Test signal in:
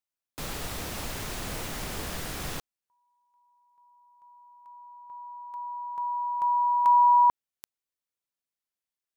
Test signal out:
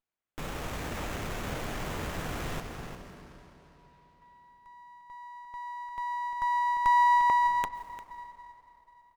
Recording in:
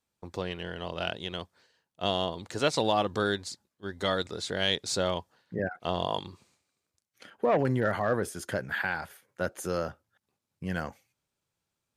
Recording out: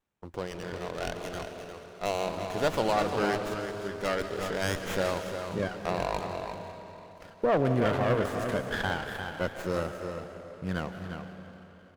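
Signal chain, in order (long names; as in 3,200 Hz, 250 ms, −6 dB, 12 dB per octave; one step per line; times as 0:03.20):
slap from a distant wall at 60 metres, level −7 dB
comb and all-pass reverb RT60 3.5 s, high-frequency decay 0.85×, pre-delay 95 ms, DRR 7 dB
windowed peak hold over 9 samples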